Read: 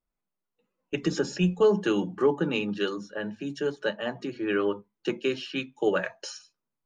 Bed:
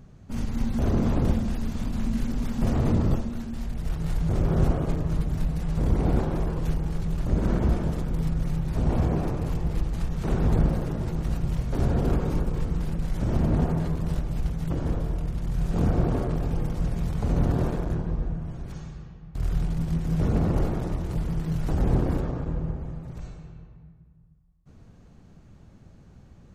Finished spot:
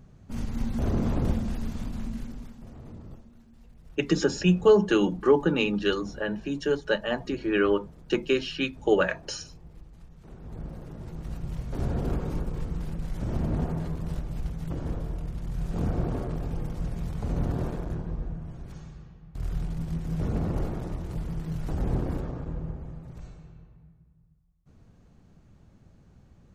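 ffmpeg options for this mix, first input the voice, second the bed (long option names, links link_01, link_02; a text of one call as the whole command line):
ffmpeg -i stem1.wav -i stem2.wav -filter_complex "[0:a]adelay=3050,volume=3dB[link_01];[1:a]volume=13.5dB,afade=type=out:start_time=1.67:duration=0.96:silence=0.11885,afade=type=in:start_time=10.43:duration=1.47:silence=0.149624[link_02];[link_01][link_02]amix=inputs=2:normalize=0" out.wav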